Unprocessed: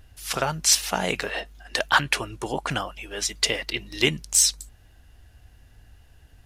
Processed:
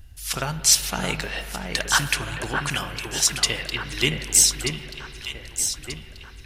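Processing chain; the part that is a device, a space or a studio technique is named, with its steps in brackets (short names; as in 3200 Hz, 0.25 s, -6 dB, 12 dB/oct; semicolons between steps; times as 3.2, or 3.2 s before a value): 2.62–3.3 tilt +2 dB/oct; smiley-face EQ (low shelf 150 Hz +7 dB; bell 610 Hz -6 dB 2.2 oct; high shelf 5700 Hz +4.5 dB); echo with dull and thin repeats by turns 0.617 s, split 2400 Hz, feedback 65%, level -5 dB; spring tank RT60 3.7 s, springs 35/47 ms, chirp 30 ms, DRR 10.5 dB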